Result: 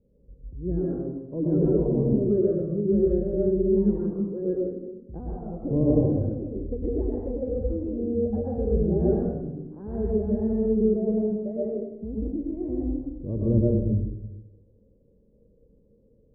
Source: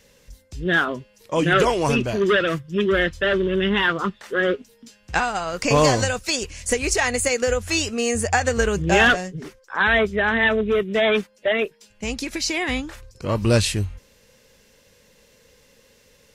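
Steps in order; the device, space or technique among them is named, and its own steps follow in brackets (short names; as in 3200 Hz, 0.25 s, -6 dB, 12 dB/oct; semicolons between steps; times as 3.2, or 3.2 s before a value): next room (LPF 420 Hz 24 dB/oct; reverb RT60 0.95 s, pre-delay 0.102 s, DRR -4.5 dB); gain -5 dB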